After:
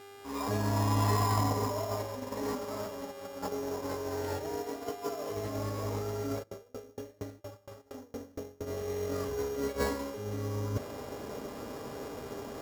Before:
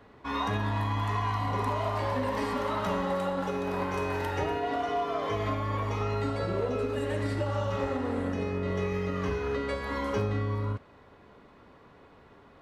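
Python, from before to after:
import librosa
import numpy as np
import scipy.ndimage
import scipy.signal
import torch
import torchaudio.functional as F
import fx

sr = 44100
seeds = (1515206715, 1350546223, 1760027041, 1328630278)

y = fx.fade_in_head(x, sr, length_s=2.61)
y = 10.0 ** (-26.0 / 20.0) * np.tanh(y / 10.0 ** (-26.0 / 20.0))
y = fx.peak_eq(y, sr, hz=570.0, db=6.5, octaves=0.66)
y = fx.over_compress(y, sr, threshold_db=-36.0, ratio=-0.5)
y = fx.dmg_buzz(y, sr, base_hz=400.0, harmonics=19, level_db=-53.0, tilt_db=-3, odd_only=False)
y = fx.peak_eq(y, sr, hz=270.0, db=7.5, octaves=2.9)
y = fx.notch_comb(y, sr, f0_hz=180.0)
y = fx.sample_hold(y, sr, seeds[0], rate_hz=6100.0, jitter_pct=0)
y = fx.tremolo_decay(y, sr, direction='decaying', hz=4.3, depth_db=33, at=(6.42, 8.66), fade=0.02)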